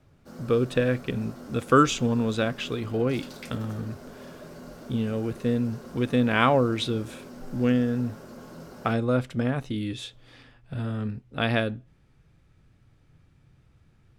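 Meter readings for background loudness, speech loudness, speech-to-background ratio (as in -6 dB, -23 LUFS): -44.0 LUFS, -26.5 LUFS, 17.5 dB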